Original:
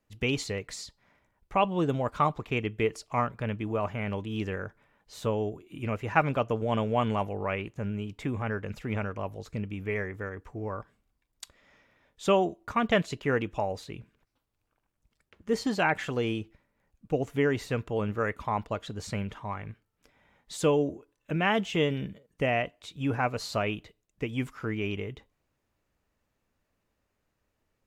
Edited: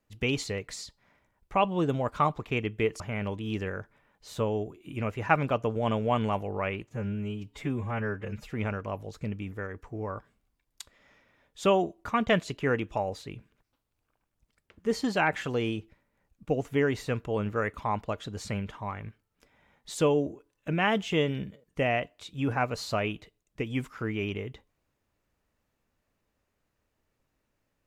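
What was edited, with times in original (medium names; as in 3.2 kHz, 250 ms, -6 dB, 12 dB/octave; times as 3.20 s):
3.00–3.86 s: delete
7.73–8.82 s: stretch 1.5×
9.83–10.14 s: delete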